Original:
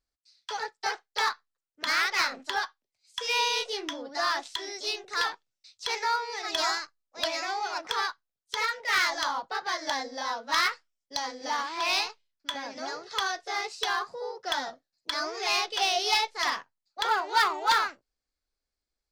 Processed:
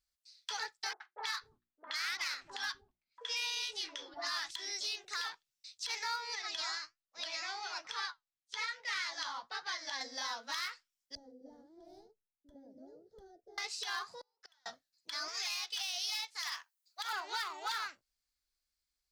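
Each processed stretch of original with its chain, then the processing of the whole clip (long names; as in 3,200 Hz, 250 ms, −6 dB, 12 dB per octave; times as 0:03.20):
0:00.93–0:04.51: mains-hum notches 60/120/180/240/300/360 Hz + low-pass that shuts in the quiet parts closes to 1,100 Hz, open at −27.5 dBFS + three-band delay without the direct sound mids, highs, lows 70/250 ms, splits 290/890 Hz
0:06.35–0:10.01: low-pass filter 6,500 Hz + flanger 1.2 Hz, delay 5.6 ms, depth 5.2 ms, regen +66%
0:11.15–0:13.58: inverse Chebyshev low-pass filter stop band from 1,000 Hz + parametric band 130 Hz −7.5 dB 0.4 octaves
0:14.21–0:14.66: high-pass filter 570 Hz + downward compressor 1.5 to 1, threshold −47 dBFS + gate with flip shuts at −37 dBFS, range −33 dB
0:15.28–0:17.13: high-pass filter 760 Hz + high-shelf EQ 7,800 Hz +10 dB + hard clipping −13 dBFS
whole clip: guitar amp tone stack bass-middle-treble 5-5-5; downward compressor 3 to 1, threshold −43 dBFS; brickwall limiter −35 dBFS; level +8.5 dB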